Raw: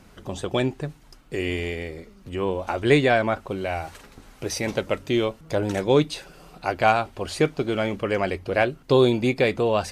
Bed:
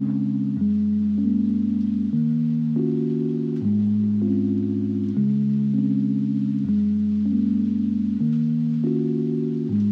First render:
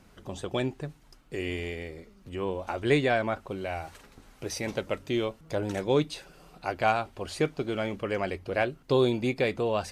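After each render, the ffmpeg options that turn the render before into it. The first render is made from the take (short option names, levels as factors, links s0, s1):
-af "volume=0.501"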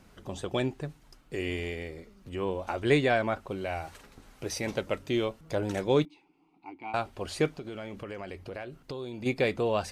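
-filter_complex "[0:a]asettb=1/sr,asplit=3[s0][s1][s2];[s0]atrim=end=6.054[s3];[s1]atrim=start=6.05:end=6.94,asetpts=PTS-STARTPTS,afade=t=in:d=0.004:c=qsin,afade=t=out:st=0.886:d=0.004:c=qsin,asplit=3[s4][s5][s6];[s4]bandpass=f=300:t=q:w=8,volume=1[s7];[s5]bandpass=f=870:t=q:w=8,volume=0.501[s8];[s6]bandpass=f=2240:t=q:w=8,volume=0.355[s9];[s7][s8][s9]amix=inputs=3:normalize=0[s10];[s2]atrim=start=6.936[s11];[s3][s10]acrossfade=d=0.004:c1=hsin:c2=qsin[s12];[s12][s11]acrossfade=d=0.004:c1=qsin:c2=hsin,asplit=3[s13][s14][s15];[s13]afade=t=out:st=7.52:d=0.02[s16];[s14]acompressor=threshold=0.0158:ratio=5:attack=3.2:release=140:knee=1:detection=peak,afade=t=in:st=7.52:d=0.02,afade=t=out:st=9.25:d=0.02[s17];[s15]afade=t=in:st=9.25:d=0.02[s18];[s16][s17][s18]amix=inputs=3:normalize=0"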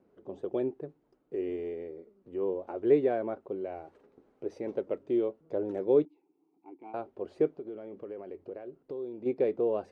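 -filter_complex "[0:a]asplit=2[s0][s1];[s1]aeval=exprs='sgn(val(0))*max(abs(val(0))-0.00376,0)':c=same,volume=0.422[s2];[s0][s2]amix=inputs=2:normalize=0,bandpass=f=400:t=q:w=2.3:csg=0"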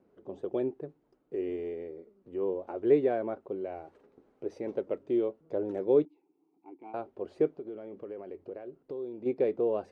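-af anull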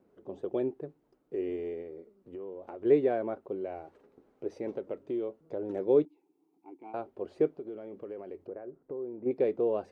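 -filter_complex "[0:a]asplit=3[s0][s1][s2];[s0]afade=t=out:st=1.81:d=0.02[s3];[s1]acompressor=threshold=0.0126:ratio=6:attack=3.2:release=140:knee=1:detection=peak,afade=t=in:st=1.81:d=0.02,afade=t=out:st=2.84:d=0.02[s4];[s2]afade=t=in:st=2.84:d=0.02[s5];[s3][s4][s5]amix=inputs=3:normalize=0,asettb=1/sr,asplit=3[s6][s7][s8];[s6]atrim=end=4.774[s9];[s7]atrim=start=4.77:end=5.7,asetpts=PTS-STARTPTS,afade=t=in:d=0.004:c=qsin,afade=t=out:st=0.926:d=0.004:c=qsin,acompressor=threshold=0.0224:ratio=2:attack=3.2:release=140:knee=1:detection=peak[s10];[s8]atrim=start=5.696[s11];[s9][s10]acrossfade=d=0.004:c1=hsin:c2=qsin[s12];[s12][s11]acrossfade=d=0.004:c1=qsin:c2=hsin,asettb=1/sr,asplit=3[s13][s14][s15];[s13]atrim=end=8.474[s16];[s14]atrim=start=8.47:end=9.31,asetpts=PTS-STARTPTS,afade=t=in:d=0.004:c=qsin,afade=t=out:st=0.836:d=0.004:c=qsin,lowpass=f=1900:w=0.5412,lowpass=f=1900:w=1.3066[s17];[s15]atrim=start=9.306[s18];[s16][s17]acrossfade=d=0.004:c1=hsin:c2=qsin[s19];[s19][s18]acrossfade=d=0.004:c1=qsin:c2=hsin"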